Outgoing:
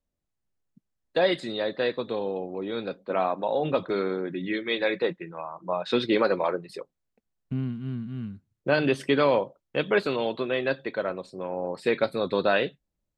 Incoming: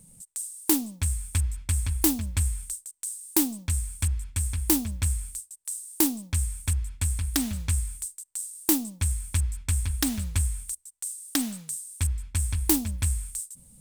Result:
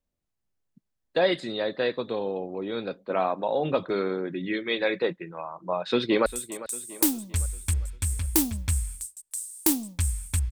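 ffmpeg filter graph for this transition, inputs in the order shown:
ffmpeg -i cue0.wav -i cue1.wav -filter_complex "[0:a]apad=whole_dur=10.51,atrim=end=10.51,atrim=end=6.262[link_01];[1:a]atrim=start=2.598:end=6.85[link_02];[link_01][link_02]acrossfade=duration=0.004:curve1=hsin:curve2=hsin,asplit=2[link_03][link_04];[link_04]afade=type=in:start_time=5.7:duration=0.01,afade=type=out:start_time=6.26:duration=0.01,aecho=0:1:400|800|1200|1600|2000:0.16788|0.0839402|0.0419701|0.0209851|0.0104925[link_05];[link_03][link_05]amix=inputs=2:normalize=0" out.wav

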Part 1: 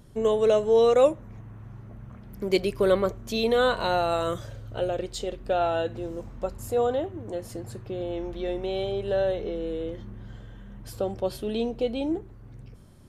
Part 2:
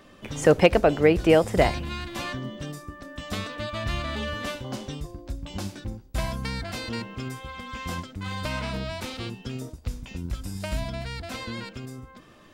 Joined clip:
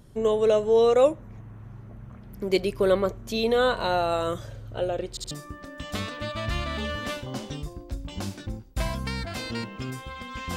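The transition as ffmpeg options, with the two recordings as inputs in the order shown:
ffmpeg -i cue0.wav -i cue1.wav -filter_complex "[0:a]apad=whole_dur=10.56,atrim=end=10.56,asplit=3[link_01][link_02][link_03];[link_01]atrim=end=5.172[link_04];[link_02]atrim=start=5.098:end=5.172[link_05];[link_03]atrim=start=5.098:end=5.172[link_06];[1:a]atrim=start=2.688:end=7.94[link_07];[link_04][link_05]acrossfade=duration=0.004:curve1=hsin:curve2=hsin[link_08];[link_08][link_06]acrossfade=duration=0.004:curve1=hsin:curve2=hsin[link_09];[link_09][link_07]acrossfade=duration=0.004:curve1=hsin:curve2=hsin" out.wav

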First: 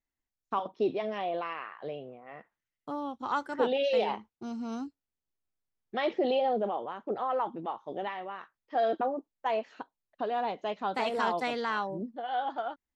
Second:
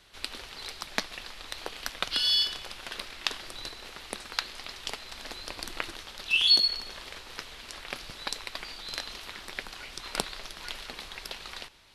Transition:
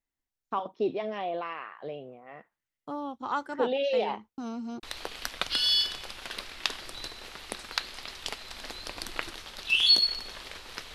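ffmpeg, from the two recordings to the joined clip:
ffmpeg -i cue0.wav -i cue1.wav -filter_complex "[0:a]apad=whole_dur=10.94,atrim=end=10.94,asplit=2[link_01][link_02];[link_01]atrim=end=4.382[link_03];[link_02]atrim=start=4.378:end=4.832,asetpts=PTS-STARTPTS,areverse[link_04];[1:a]atrim=start=1.438:end=7.55[link_05];[link_03][link_04]acrossfade=duration=0.004:curve1=hsin:curve2=hsin[link_06];[link_06][link_05]acrossfade=duration=0.004:curve1=hsin:curve2=hsin" out.wav

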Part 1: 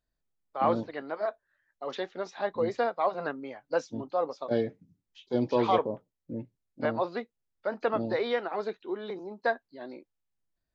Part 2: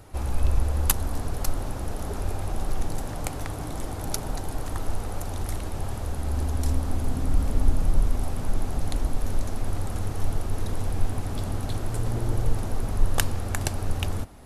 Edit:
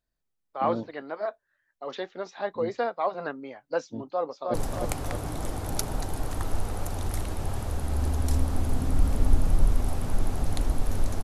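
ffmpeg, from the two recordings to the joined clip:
ffmpeg -i cue0.wav -i cue1.wav -filter_complex "[0:a]apad=whole_dur=11.23,atrim=end=11.23,atrim=end=4.542[link_01];[1:a]atrim=start=2.888:end=9.58[link_02];[link_01][link_02]acrossfade=duration=0.004:curve1=hsin:curve2=hsin,asplit=2[link_03][link_04];[link_04]afade=type=in:start_time=4.13:duration=0.01,afade=type=out:start_time=4.54:duration=0.01,aecho=0:1:310|620|930|1240|1550|1860|2170:0.668344|0.334172|0.167086|0.083543|0.0417715|0.0208857|0.0104429[link_05];[link_03][link_05]amix=inputs=2:normalize=0" out.wav

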